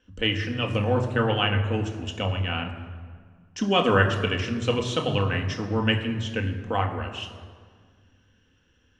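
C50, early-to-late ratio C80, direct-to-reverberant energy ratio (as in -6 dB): 8.5 dB, 9.5 dB, 2.5 dB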